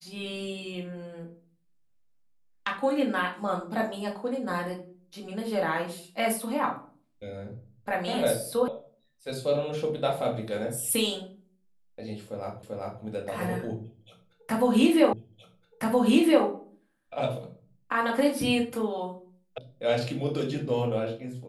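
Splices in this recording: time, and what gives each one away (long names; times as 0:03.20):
0:08.68: cut off before it has died away
0:12.63: the same again, the last 0.39 s
0:15.13: the same again, the last 1.32 s
0:19.58: cut off before it has died away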